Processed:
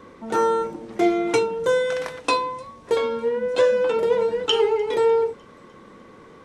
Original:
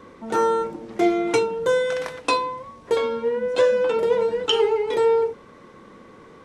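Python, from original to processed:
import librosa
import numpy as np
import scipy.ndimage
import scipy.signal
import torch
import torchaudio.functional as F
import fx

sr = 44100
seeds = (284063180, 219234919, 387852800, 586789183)

y = fx.echo_wet_highpass(x, sr, ms=301, feedback_pct=57, hz=5300.0, wet_db=-20.0)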